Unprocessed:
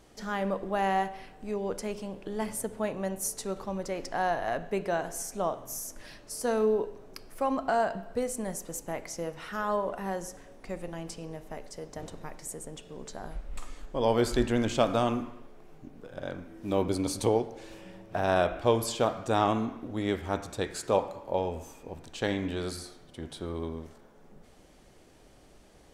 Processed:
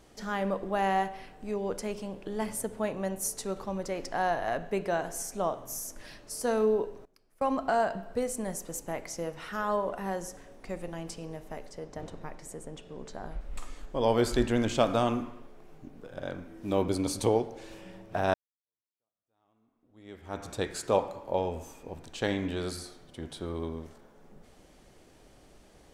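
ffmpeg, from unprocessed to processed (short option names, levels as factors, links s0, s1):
-filter_complex "[0:a]asettb=1/sr,asplit=3[s0][s1][s2];[s0]atrim=end=7.054[s3];[s1]atrim=start=7.05:end=7.55,asetpts=PTS-STARTPTS,afade=t=in:d=0.004:c=qsin,afade=t=out:st=0.496:d=0.004:c=qsin,agate=range=0.1:threshold=0.0141:ratio=16:release=100:detection=peak[s4];[s2]atrim=start=7.546[s5];[s3][s4]acrossfade=d=0.004:c1=hsin:c2=qsin[s6];[s6][s5]acrossfade=d=0.004:c1=qsin:c2=hsin,asettb=1/sr,asplit=3[s7][s8][s9];[s7]atrim=end=11.704[s10];[s8]atrim=start=11.7:end=13.41,asetpts=PTS-STARTPTS,afade=t=in:d=0.004:c=qsin,afade=t=out:st=1.706:d=0.004:c=qsin,aemphasis=mode=reproduction:type=cd[s11];[s9]atrim=start=13.406[s12];[s10][s11]acrossfade=d=0.004:c1=hsin:c2=qsin[s13];[s13][s12]acrossfade=d=0.004:c1=qsin:c2=hsin,asplit=2[s14][s15];[s14]atrim=end=18.34,asetpts=PTS-STARTPTS,afade=t=out:st=18.336:d=0.004:c=hsin[s16];[s15]atrim=start=18.34,asetpts=PTS-STARTPTS,afade=t=in:d=2.14:c=exp[s17];[s16][s17]concat=n=2:v=0:a=1"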